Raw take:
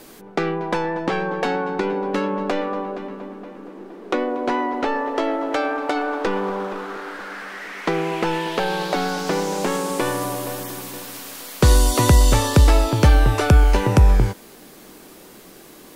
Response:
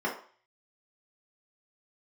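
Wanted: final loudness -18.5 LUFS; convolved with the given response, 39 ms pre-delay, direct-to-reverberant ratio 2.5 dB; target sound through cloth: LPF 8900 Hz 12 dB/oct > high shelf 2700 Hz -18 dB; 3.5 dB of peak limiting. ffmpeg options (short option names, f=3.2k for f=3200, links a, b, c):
-filter_complex "[0:a]alimiter=limit=-8dB:level=0:latency=1,asplit=2[a][b];[1:a]atrim=start_sample=2205,adelay=39[c];[b][c]afir=irnorm=-1:irlink=0,volume=-12dB[d];[a][d]amix=inputs=2:normalize=0,lowpass=8.9k,highshelf=f=2.7k:g=-18,volume=2.5dB"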